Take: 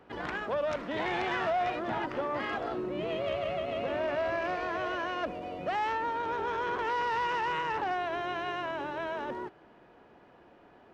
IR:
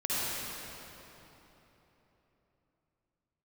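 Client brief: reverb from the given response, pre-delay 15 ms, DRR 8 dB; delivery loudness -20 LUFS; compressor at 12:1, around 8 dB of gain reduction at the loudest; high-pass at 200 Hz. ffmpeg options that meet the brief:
-filter_complex "[0:a]highpass=200,acompressor=threshold=0.0178:ratio=12,asplit=2[s0][s1];[1:a]atrim=start_sample=2205,adelay=15[s2];[s1][s2]afir=irnorm=-1:irlink=0,volume=0.133[s3];[s0][s3]amix=inputs=2:normalize=0,volume=8.41"

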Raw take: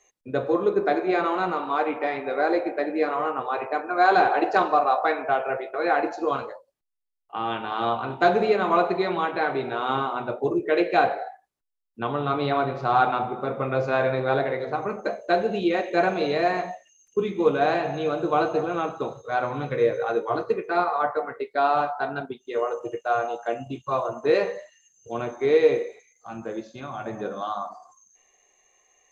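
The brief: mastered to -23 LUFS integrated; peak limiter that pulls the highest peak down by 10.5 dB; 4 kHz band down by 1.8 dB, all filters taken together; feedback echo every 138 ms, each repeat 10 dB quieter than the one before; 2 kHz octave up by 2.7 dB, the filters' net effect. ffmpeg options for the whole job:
-af "equalizer=f=2000:t=o:g=4.5,equalizer=f=4000:t=o:g=-3.5,alimiter=limit=0.178:level=0:latency=1,aecho=1:1:138|276|414|552:0.316|0.101|0.0324|0.0104,volume=1.41"

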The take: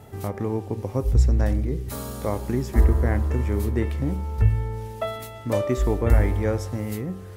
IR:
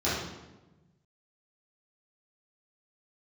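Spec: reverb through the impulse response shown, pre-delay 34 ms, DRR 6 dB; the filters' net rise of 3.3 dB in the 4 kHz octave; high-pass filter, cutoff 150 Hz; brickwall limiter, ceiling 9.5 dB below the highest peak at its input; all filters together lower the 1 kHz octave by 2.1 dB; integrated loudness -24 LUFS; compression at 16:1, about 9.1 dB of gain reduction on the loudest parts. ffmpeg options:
-filter_complex "[0:a]highpass=150,equalizer=f=1000:t=o:g=-3,equalizer=f=4000:t=o:g=4.5,acompressor=threshold=0.0355:ratio=16,alimiter=level_in=1.58:limit=0.0631:level=0:latency=1,volume=0.631,asplit=2[s0][s1];[1:a]atrim=start_sample=2205,adelay=34[s2];[s1][s2]afir=irnorm=-1:irlink=0,volume=0.126[s3];[s0][s3]amix=inputs=2:normalize=0,volume=3.98"

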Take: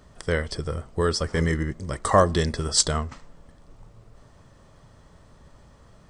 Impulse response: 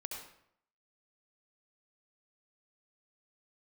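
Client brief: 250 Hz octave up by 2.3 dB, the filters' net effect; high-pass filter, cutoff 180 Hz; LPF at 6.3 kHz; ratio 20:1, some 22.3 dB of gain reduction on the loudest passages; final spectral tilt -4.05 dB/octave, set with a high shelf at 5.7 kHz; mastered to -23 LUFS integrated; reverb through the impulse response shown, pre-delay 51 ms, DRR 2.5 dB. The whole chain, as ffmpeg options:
-filter_complex "[0:a]highpass=180,lowpass=6300,equalizer=f=250:t=o:g=6,highshelf=f=5700:g=4.5,acompressor=threshold=0.0224:ratio=20,asplit=2[s0][s1];[1:a]atrim=start_sample=2205,adelay=51[s2];[s1][s2]afir=irnorm=-1:irlink=0,volume=0.841[s3];[s0][s3]amix=inputs=2:normalize=0,volume=5.01"

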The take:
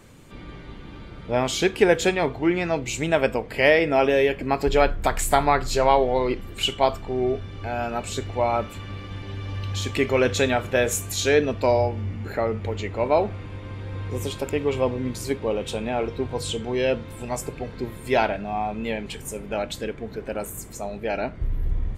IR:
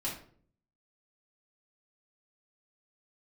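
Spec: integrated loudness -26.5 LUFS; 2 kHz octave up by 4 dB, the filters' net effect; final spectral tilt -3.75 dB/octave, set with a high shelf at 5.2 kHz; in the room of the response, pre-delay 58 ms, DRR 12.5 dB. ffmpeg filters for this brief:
-filter_complex "[0:a]equalizer=f=2000:t=o:g=6,highshelf=f=5200:g=-8,asplit=2[s0][s1];[1:a]atrim=start_sample=2205,adelay=58[s2];[s1][s2]afir=irnorm=-1:irlink=0,volume=0.168[s3];[s0][s3]amix=inputs=2:normalize=0,volume=0.668"

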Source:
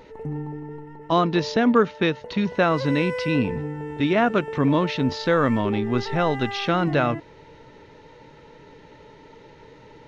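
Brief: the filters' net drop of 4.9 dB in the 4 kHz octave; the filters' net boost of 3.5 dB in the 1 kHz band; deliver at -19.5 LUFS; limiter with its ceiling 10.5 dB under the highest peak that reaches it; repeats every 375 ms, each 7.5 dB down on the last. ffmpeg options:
-af "equalizer=f=1000:t=o:g=5,equalizer=f=4000:t=o:g=-6.5,alimiter=limit=0.178:level=0:latency=1,aecho=1:1:375|750|1125|1500|1875:0.422|0.177|0.0744|0.0312|0.0131,volume=2"

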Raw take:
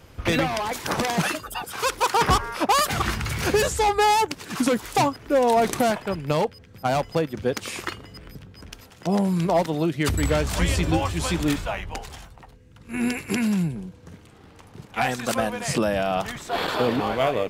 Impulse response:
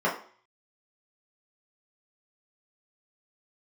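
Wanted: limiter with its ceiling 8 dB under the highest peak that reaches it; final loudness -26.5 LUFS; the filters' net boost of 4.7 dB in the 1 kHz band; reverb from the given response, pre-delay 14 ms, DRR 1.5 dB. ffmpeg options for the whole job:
-filter_complex "[0:a]equalizer=f=1000:t=o:g=6,alimiter=limit=0.211:level=0:latency=1,asplit=2[s0][s1];[1:a]atrim=start_sample=2205,adelay=14[s2];[s1][s2]afir=irnorm=-1:irlink=0,volume=0.168[s3];[s0][s3]amix=inputs=2:normalize=0,volume=0.531"

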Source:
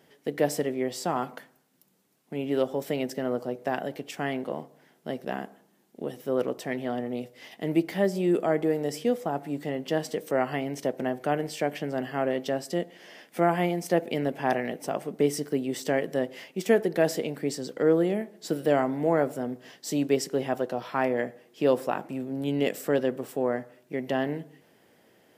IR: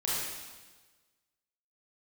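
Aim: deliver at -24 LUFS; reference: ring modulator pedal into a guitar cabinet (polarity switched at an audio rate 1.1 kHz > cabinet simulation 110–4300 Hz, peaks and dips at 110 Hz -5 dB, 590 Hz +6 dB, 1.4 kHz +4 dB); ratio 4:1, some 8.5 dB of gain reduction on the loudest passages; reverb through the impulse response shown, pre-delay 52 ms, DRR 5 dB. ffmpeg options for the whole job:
-filter_complex "[0:a]acompressor=threshold=0.0447:ratio=4,asplit=2[s0][s1];[1:a]atrim=start_sample=2205,adelay=52[s2];[s1][s2]afir=irnorm=-1:irlink=0,volume=0.237[s3];[s0][s3]amix=inputs=2:normalize=0,aeval=exprs='val(0)*sgn(sin(2*PI*1100*n/s))':c=same,highpass=110,equalizer=f=110:t=q:w=4:g=-5,equalizer=f=590:t=q:w=4:g=6,equalizer=f=1400:t=q:w=4:g=4,lowpass=f=4300:w=0.5412,lowpass=f=4300:w=1.3066,volume=1.88"

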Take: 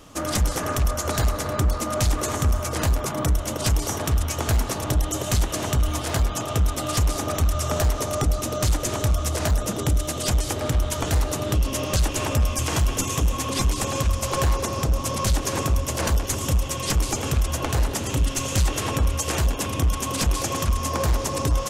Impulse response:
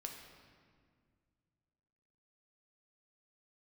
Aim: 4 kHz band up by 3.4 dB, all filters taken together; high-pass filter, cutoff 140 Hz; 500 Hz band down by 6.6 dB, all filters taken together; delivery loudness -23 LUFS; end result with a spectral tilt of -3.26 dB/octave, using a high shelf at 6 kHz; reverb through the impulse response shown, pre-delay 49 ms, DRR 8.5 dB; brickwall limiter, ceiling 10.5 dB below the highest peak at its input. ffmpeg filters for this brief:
-filter_complex "[0:a]highpass=140,equalizer=f=500:t=o:g=-8.5,equalizer=f=4000:t=o:g=8,highshelf=f=6000:g=-9,alimiter=limit=0.0891:level=0:latency=1,asplit=2[s0][s1];[1:a]atrim=start_sample=2205,adelay=49[s2];[s1][s2]afir=irnorm=-1:irlink=0,volume=0.531[s3];[s0][s3]amix=inputs=2:normalize=0,volume=2.24"

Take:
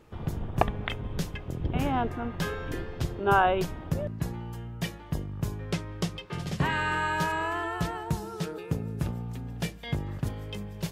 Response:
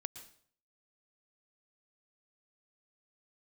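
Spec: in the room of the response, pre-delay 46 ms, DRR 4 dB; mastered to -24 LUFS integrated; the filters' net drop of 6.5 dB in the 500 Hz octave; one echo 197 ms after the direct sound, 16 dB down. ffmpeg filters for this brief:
-filter_complex "[0:a]equalizer=f=500:t=o:g=-9,aecho=1:1:197:0.158,asplit=2[s0][s1];[1:a]atrim=start_sample=2205,adelay=46[s2];[s1][s2]afir=irnorm=-1:irlink=0,volume=0.841[s3];[s0][s3]amix=inputs=2:normalize=0,volume=2.24"

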